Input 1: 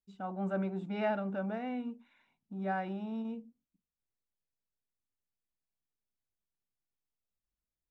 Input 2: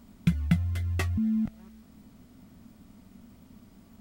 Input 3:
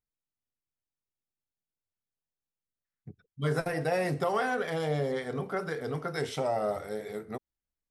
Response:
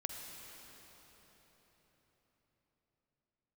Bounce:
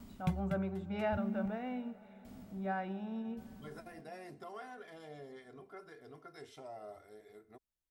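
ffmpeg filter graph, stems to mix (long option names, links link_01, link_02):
-filter_complex "[0:a]volume=-4.5dB,asplit=3[link_01][link_02][link_03];[link_02]volume=-10.5dB[link_04];[1:a]aeval=exprs='val(0)*pow(10,-24*if(lt(mod(0.89*n/s,1),2*abs(0.89)/1000),1-mod(0.89*n/s,1)/(2*abs(0.89)/1000),(mod(0.89*n/s,1)-2*abs(0.89)/1000)/(1-2*abs(0.89)/1000))/20)':channel_layout=same,volume=2dB[link_05];[2:a]aecho=1:1:2.9:0.57,adelay=200,volume=-20dB[link_06];[link_03]apad=whole_len=176595[link_07];[link_05][link_07]sidechaincompress=threshold=-42dB:ratio=8:attack=5.5:release=917[link_08];[3:a]atrim=start_sample=2205[link_09];[link_04][link_09]afir=irnorm=-1:irlink=0[link_10];[link_01][link_08][link_06][link_10]amix=inputs=4:normalize=0"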